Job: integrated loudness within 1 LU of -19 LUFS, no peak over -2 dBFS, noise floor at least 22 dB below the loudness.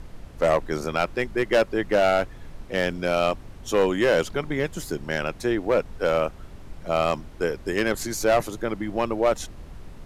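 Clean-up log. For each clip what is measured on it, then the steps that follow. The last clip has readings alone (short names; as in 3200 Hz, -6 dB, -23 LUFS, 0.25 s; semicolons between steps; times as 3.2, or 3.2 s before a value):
clipped 0.9%; flat tops at -13.5 dBFS; noise floor -43 dBFS; noise floor target -47 dBFS; loudness -24.5 LUFS; peak -13.5 dBFS; loudness target -19.0 LUFS
-> clip repair -13.5 dBFS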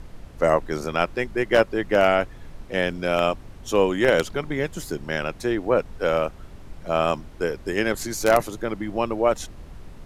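clipped 0.0%; noise floor -42 dBFS; noise floor target -46 dBFS
-> noise print and reduce 6 dB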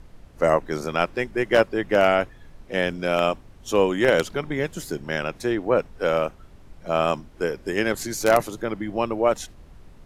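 noise floor -48 dBFS; loudness -23.5 LUFS; peak -4.5 dBFS; loudness target -19.0 LUFS
-> gain +4.5 dB; limiter -2 dBFS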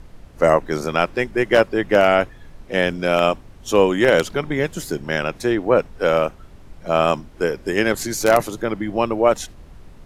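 loudness -19.5 LUFS; peak -2.0 dBFS; noise floor -43 dBFS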